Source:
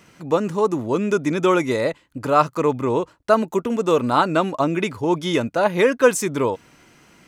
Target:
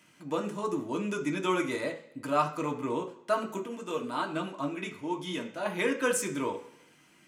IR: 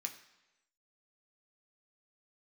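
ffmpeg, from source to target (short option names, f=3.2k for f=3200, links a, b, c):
-filter_complex "[0:a]asettb=1/sr,asplit=3[a][b][c];[a]atrim=end=3.574[d];[b]atrim=start=3.57:end=5.66,asetpts=PTS-STARTPTS,afade=t=in:d=0.004:c=qsin,afade=t=out:st=2.086:d=0.004:c=qsin,flanger=delay=4:depth=8.2:regen=53:speed=1.1:shape=triangular[e];[c]atrim=start=5.656[f];[d][e]acrossfade=d=0.004:c1=hsin:c2=qsin[g];[g][f]acrossfade=d=0.004:c1=qsin:c2=hsin[h];[1:a]atrim=start_sample=2205,asetrate=57330,aresample=44100[i];[h][i]afir=irnorm=-1:irlink=0,volume=-3.5dB"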